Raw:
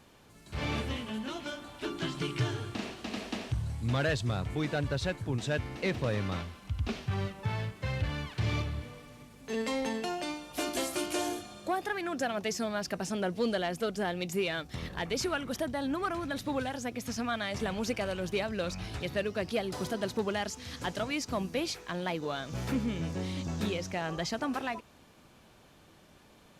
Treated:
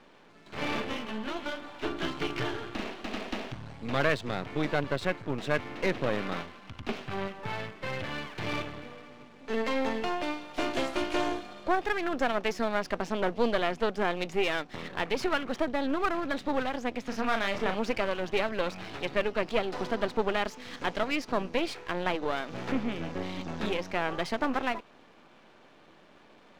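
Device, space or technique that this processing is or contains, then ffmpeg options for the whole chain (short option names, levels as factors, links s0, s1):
crystal radio: -filter_complex "[0:a]highpass=240,lowpass=3100,aeval=exprs='if(lt(val(0),0),0.251*val(0),val(0))':c=same,asettb=1/sr,asplit=3[s0][s1][s2];[s0]atrim=end=17.084[s3];[s1]atrim=start=17.08:end=17.76,asetpts=PTS-STARTPTS,afade=t=in:d=0.004:c=qsin,afade=t=out:st=0.676:d=0.004:c=qsin,asplit=2[s4][s5];[s5]adelay=36,volume=0.447[s6];[s4][s6]amix=inputs=2:normalize=0,atrim=end_sample=29988[s7];[s2]atrim=start=17.756[s8];[s3][s7]acrossfade=d=0.004:c1=hsin:c2=qsin[s9];[s9][s8]acrossfade=d=0.004:c1=qsin:c2=hsin,volume=2.37"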